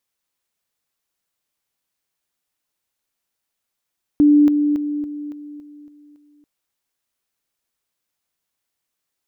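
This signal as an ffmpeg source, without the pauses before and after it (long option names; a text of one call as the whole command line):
ffmpeg -f lavfi -i "aevalsrc='pow(10,(-8.5-6*floor(t/0.28))/20)*sin(2*PI*294*t)':duration=2.24:sample_rate=44100" out.wav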